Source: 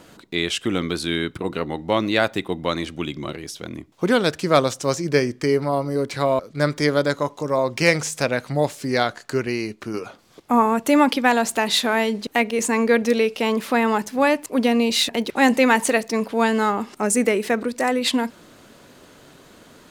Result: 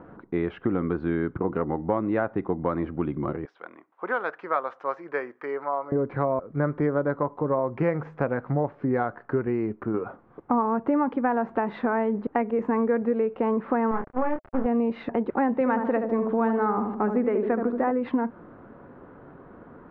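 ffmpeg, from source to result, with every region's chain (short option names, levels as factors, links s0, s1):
-filter_complex "[0:a]asettb=1/sr,asplit=3[s0][s1][s2];[s0]atrim=end=3.454[s3];[s1]atrim=start=3.45:end=5.92,asetpts=PTS-STARTPTS,afade=t=in:d=0.004:c=qsin,afade=t=out:st=2.466:d=0.004:c=qsin,highpass=900,highshelf=f=3800:g=7[s4];[s2]atrim=start=5.916[s5];[s3][s4]acrossfade=d=0.004:c1=hsin:c2=qsin[s6];[s6][s5]acrossfade=d=0.004:c1=qsin:c2=hsin,asettb=1/sr,asplit=3[s7][s8][s9];[s7]atrim=end=13.914[s10];[s8]atrim=start=13.91:end=14.66,asetpts=PTS-STARTPTS,afade=t=in:d=0.004:c=qsin,afade=t=out:st=0.746:d=0.004:c=qsin,aeval=exprs='if(lt(val(0),0),0.251*val(0),val(0))':c=same,acrusher=bits=3:mix=0:aa=0.5,asplit=2[s11][s12];[s12]adelay=27,volume=0.531[s13];[s11][s13]amix=inputs=2:normalize=0,atrim=end_sample=33075[s14];[s9]atrim=start=14.656[s15];[s10][s14]acrossfade=d=0.004:c1=hsin:c2=qsin[s16];[s16][s15]acrossfade=d=0.004:c1=qsin:c2=hsin,asettb=1/sr,asplit=3[s17][s18][s19];[s17]atrim=end=15.534[s20];[s18]atrim=start=15.53:end=17.91,asetpts=PTS-STARTPTS,afade=t=in:d=0.004:c=qsin,afade=t=out:st=2.376:d=0.004:c=qsin,equalizer=f=3700:w=2.3:g=7,asplit=2[s21][s22];[s22]adelay=75,lowpass=f=1000:p=1,volume=0.531,asplit=2[s23][s24];[s24]adelay=75,lowpass=f=1000:p=1,volume=0.52,asplit=2[s25][s26];[s26]adelay=75,lowpass=f=1000:p=1,volume=0.52,asplit=2[s27][s28];[s28]adelay=75,lowpass=f=1000:p=1,volume=0.52,asplit=2[s29][s30];[s30]adelay=75,lowpass=f=1000:p=1,volume=0.52,asplit=2[s31][s32];[s32]adelay=75,lowpass=f=1000:p=1,volume=0.52,asplit=2[s33][s34];[s34]adelay=75,lowpass=f=1000:p=1,volume=0.52[s35];[s21][s23][s25][s27][s29][s31][s33][s35]amix=inputs=8:normalize=0,atrim=end_sample=104958[s36];[s19]atrim=start=17.906[s37];[s20][s36]acrossfade=d=0.004:c1=hsin:c2=qsin[s38];[s38][s37]acrossfade=d=0.004:c1=qsin:c2=hsin,lowpass=f=1400:w=0.5412,lowpass=f=1400:w=1.3066,bandreject=f=620:w=12,acompressor=threshold=0.0631:ratio=4,volume=1.33"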